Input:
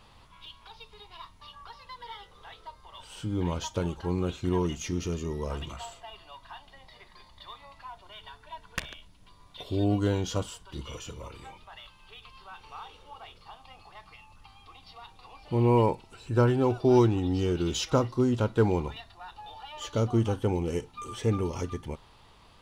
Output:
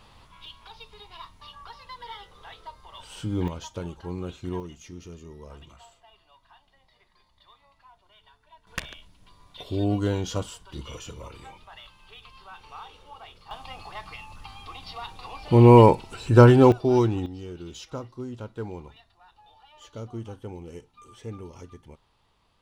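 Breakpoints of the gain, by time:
+2.5 dB
from 3.48 s -4.5 dB
from 4.6 s -11 dB
from 8.67 s +1 dB
from 13.51 s +10 dB
from 16.72 s 0 dB
from 17.26 s -11 dB

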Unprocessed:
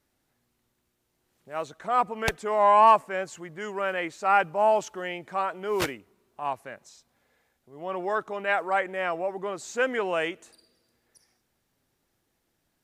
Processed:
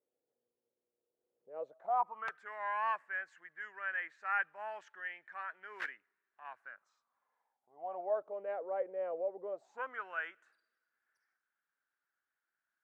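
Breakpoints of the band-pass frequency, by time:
band-pass, Q 7
1.56 s 480 Hz
2.48 s 1700 Hz
6.43 s 1700 Hz
8.47 s 510 Hz
9.47 s 510 Hz
10.04 s 1500 Hz

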